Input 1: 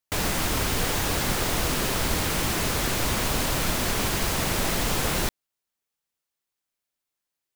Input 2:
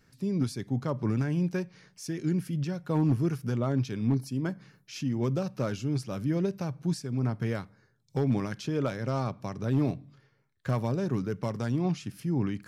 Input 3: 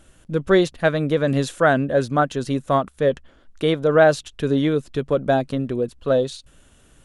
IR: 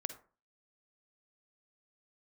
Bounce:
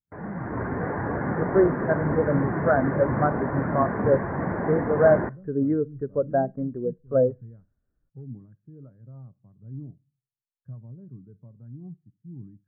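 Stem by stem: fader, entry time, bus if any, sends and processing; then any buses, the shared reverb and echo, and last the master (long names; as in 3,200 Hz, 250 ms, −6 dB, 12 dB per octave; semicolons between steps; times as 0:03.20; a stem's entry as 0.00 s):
−3.5 dB, 0.00 s, send −5.5 dB, high-pass filter 110 Hz 12 dB per octave; notch filter 1,300 Hz, Q 17; automatic gain control gain up to 7 dB
−17.5 dB, 0.00 s, send −5 dB, low-shelf EQ 270 Hz +11.5 dB
−8.0 dB, 1.05 s, send −10.5 dB, automatic gain control gain up to 4 dB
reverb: on, RT60 0.40 s, pre-delay 42 ms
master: Butterworth low-pass 1,900 Hz 48 dB per octave; every bin expanded away from the loudest bin 1.5 to 1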